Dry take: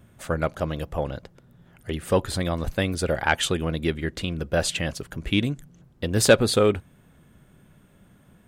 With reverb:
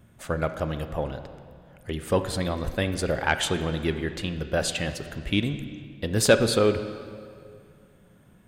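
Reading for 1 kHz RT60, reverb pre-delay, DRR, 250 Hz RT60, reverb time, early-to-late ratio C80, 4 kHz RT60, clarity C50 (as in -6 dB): 2.2 s, 23 ms, 9.0 dB, 2.3 s, 2.2 s, 11.0 dB, 1.7 s, 10.0 dB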